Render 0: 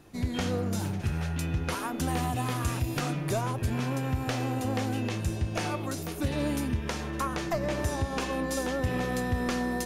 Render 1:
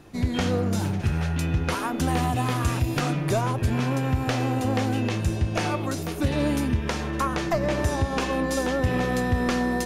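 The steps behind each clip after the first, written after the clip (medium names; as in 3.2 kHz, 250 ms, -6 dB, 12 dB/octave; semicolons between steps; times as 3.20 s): treble shelf 7.8 kHz -6.5 dB; trim +5.5 dB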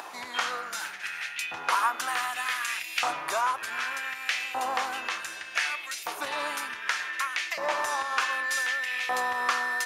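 upward compressor, threshold -28 dBFS; LFO high-pass saw up 0.66 Hz 880–2400 Hz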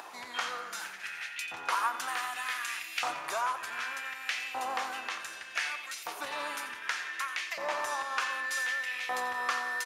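feedback delay 88 ms, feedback 58%, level -14 dB; trim -5 dB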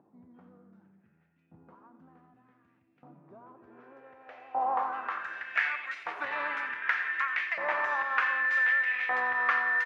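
low-pass sweep 200 Hz -> 1.9 kHz, 3.21–5.48 s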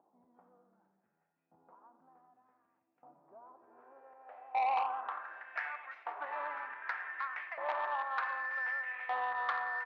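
band-pass filter 790 Hz, Q 1.9; transformer saturation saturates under 1.2 kHz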